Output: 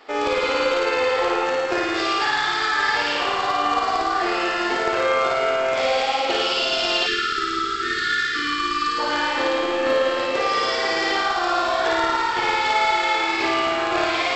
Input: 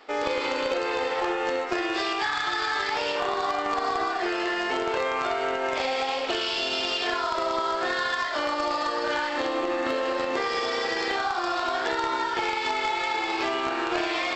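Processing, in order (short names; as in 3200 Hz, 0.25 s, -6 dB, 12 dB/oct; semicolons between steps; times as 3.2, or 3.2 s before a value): flutter echo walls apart 9.4 m, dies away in 1.4 s; spectral delete 7.07–8.98, 460–1100 Hz; gain +2.5 dB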